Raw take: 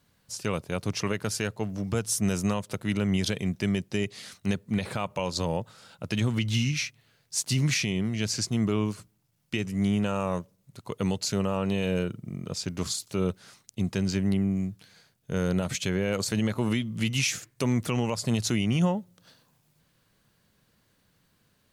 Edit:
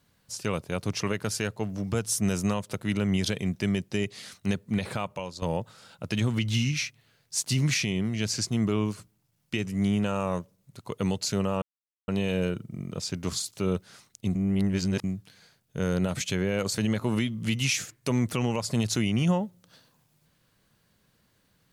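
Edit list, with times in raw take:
4.97–5.42 s: fade out, to -15 dB
11.62 s: insert silence 0.46 s
13.89–14.58 s: reverse

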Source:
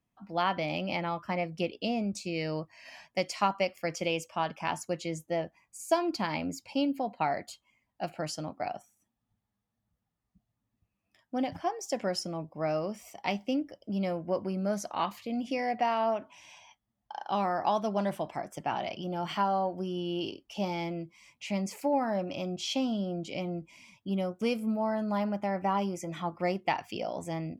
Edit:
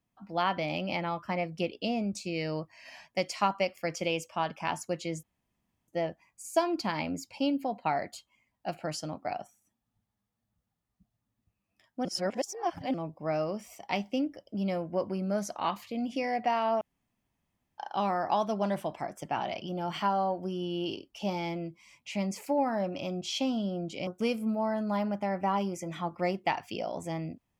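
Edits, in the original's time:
5.23 s: insert room tone 0.65 s
11.40–12.29 s: reverse
16.16–17.13 s: room tone
23.42–24.28 s: delete

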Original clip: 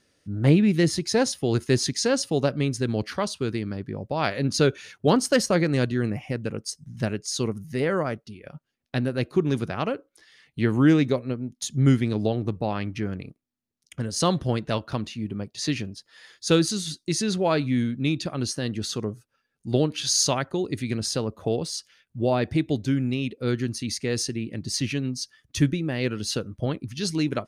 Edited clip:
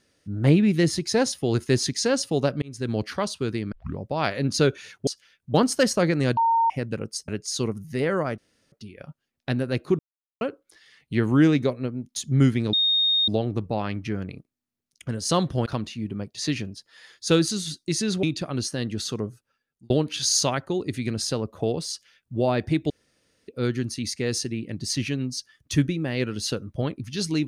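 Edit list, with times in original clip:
2.62–2.93 s: fade in
3.72 s: tape start 0.26 s
5.90–6.23 s: bleep 916 Hz -17 dBFS
6.81–7.08 s: delete
8.18 s: insert room tone 0.34 s
9.45–9.87 s: mute
12.19 s: add tone 3.7 kHz -18 dBFS 0.55 s
14.57–14.86 s: delete
17.43–18.07 s: delete
19.12–19.74 s: fade out equal-power
21.74–22.21 s: copy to 5.07 s
22.74–23.32 s: room tone

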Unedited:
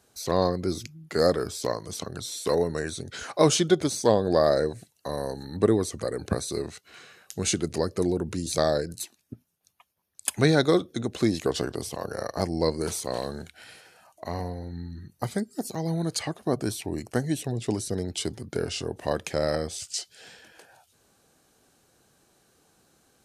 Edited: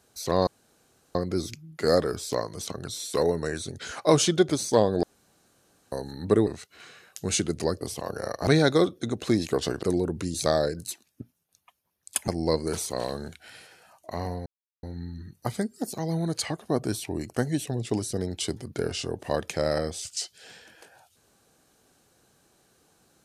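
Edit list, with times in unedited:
0.47 s: insert room tone 0.68 s
4.35–5.24 s: room tone
5.79–6.61 s: delete
7.95–10.40 s: swap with 11.76–12.42 s
14.60 s: insert silence 0.37 s

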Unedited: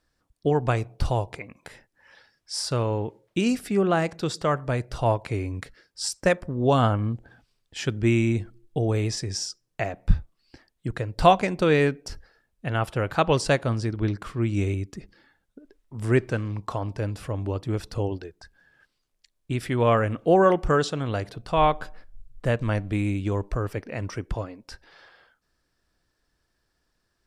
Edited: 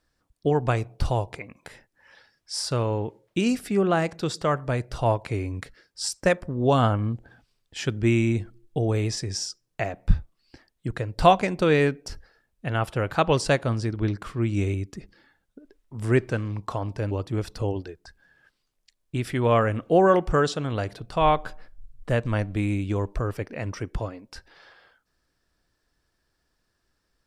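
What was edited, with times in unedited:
17.11–17.47 s: delete

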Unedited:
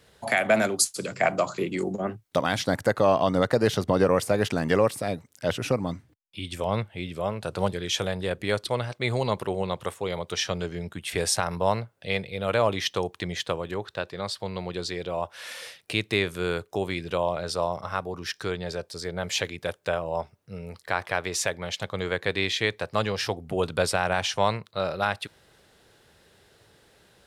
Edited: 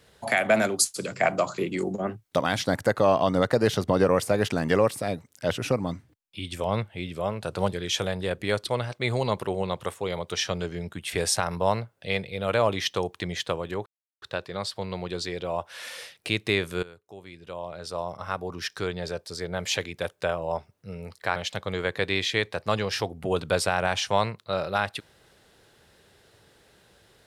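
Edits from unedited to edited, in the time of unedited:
13.86 s: insert silence 0.36 s
16.47–18.10 s: fade in quadratic, from -19 dB
21.00–21.63 s: delete

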